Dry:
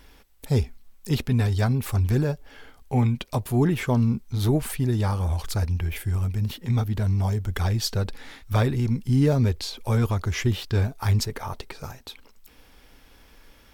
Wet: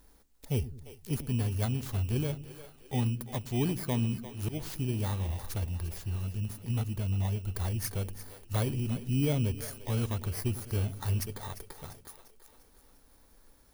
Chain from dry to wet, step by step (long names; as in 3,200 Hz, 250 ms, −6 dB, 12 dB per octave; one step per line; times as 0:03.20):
samples in bit-reversed order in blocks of 16 samples
0:04.21–0:04.66: volume swells 134 ms
echo with a time of its own for lows and highs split 350 Hz, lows 101 ms, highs 348 ms, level −13 dB
level −8.5 dB